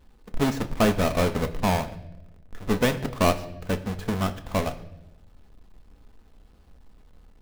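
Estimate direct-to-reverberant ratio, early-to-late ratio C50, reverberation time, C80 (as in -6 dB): 7.0 dB, 14.5 dB, 0.90 s, 17.5 dB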